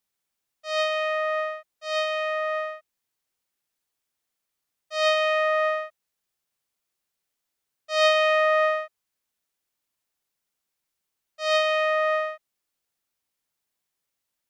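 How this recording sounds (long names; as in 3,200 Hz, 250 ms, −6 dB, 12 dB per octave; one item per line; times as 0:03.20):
background noise floor −83 dBFS
spectral slope −6.0 dB per octave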